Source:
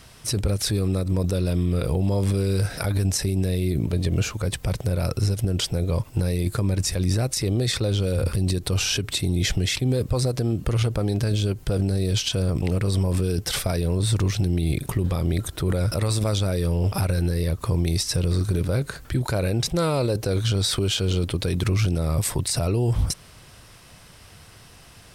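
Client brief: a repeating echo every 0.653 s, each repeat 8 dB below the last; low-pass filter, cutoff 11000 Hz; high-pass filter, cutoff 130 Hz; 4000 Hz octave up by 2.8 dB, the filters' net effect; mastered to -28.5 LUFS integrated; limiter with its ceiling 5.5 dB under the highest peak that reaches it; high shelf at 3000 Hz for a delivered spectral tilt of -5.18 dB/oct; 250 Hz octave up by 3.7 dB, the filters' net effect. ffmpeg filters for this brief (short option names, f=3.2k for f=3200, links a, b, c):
-af "highpass=130,lowpass=11k,equalizer=f=250:t=o:g=6.5,highshelf=f=3k:g=-4.5,equalizer=f=4k:t=o:g=7,alimiter=limit=-14.5dB:level=0:latency=1,aecho=1:1:653|1306|1959|2612|3265:0.398|0.159|0.0637|0.0255|0.0102,volume=-3.5dB"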